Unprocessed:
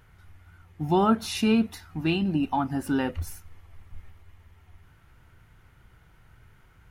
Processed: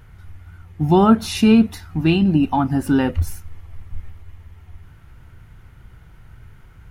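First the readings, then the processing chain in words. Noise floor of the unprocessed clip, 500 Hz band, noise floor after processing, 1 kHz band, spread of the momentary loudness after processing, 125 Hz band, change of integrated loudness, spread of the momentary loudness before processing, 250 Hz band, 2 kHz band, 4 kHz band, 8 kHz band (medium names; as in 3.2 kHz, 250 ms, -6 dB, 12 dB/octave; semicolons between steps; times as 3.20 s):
-58 dBFS, +7.5 dB, -46 dBFS, +6.0 dB, 10 LU, +11.0 dB, +9.0 dB, 11 LU, +9.5 dB, +5.5 dB, +5.5 dB, +5.5 dB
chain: bass shelf 250 Hz +7.5 dB; trim +5.5 dB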